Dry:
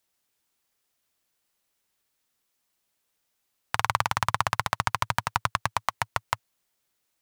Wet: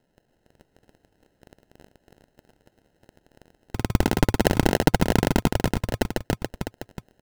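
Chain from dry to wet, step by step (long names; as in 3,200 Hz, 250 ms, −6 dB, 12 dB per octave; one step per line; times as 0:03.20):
wavefolder on the positive side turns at −17 dBFS
in parallel at −0.5 dB: brickwall limiter −14.5 dBFS, peak gain reduction 7.5 dB
on the sum: surface crackle 110 per second −41 dBFS
decimation without filtering 38×
0:03.92–0:05.32: transient designer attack +3 dB, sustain −1 dB
on a send: multi-tap delay 283/652 ms −3/−9.5 dB
on the sum: level +1 dB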